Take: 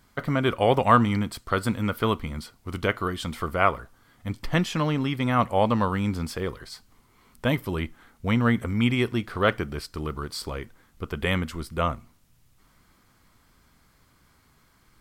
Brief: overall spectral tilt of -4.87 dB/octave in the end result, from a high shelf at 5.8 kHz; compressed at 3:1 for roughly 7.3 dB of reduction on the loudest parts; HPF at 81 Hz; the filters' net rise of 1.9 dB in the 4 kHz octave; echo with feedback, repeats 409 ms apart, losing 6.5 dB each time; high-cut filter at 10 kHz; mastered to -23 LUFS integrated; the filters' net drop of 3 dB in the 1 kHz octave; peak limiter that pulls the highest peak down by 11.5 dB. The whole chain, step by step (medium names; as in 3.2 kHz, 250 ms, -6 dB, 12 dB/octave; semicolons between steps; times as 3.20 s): high-pass 81 Hz; low-pass 10 kHz; peaking EQ 1 kHz -4 dB; peaking EQ 4 kHz +5.5 dB; treble shelf 5.8 kHz -7.5 dB; compression 3:1, threshold -25 dBFS; peak limiter -22.5 dBFS; feedback delay 409 ms, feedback 47%, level -6.5 dB; trim +10.5 dB